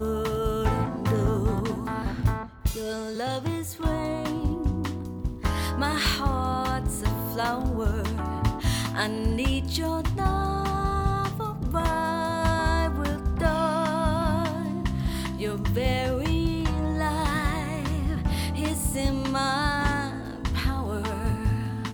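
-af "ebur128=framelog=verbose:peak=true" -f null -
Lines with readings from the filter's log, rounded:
Integrated loudness:
  I:         -27.2 LUFS
  Threshold: -37.2 LUFS
Loudness range:
  LRA:         2.6 LU
  Threshold: -47.1 LUFS
  LRA low:   -28.7 LUFS
  LRA high:  -26.0 LUFS
True peak:
  Peak:      -11.0 dBFS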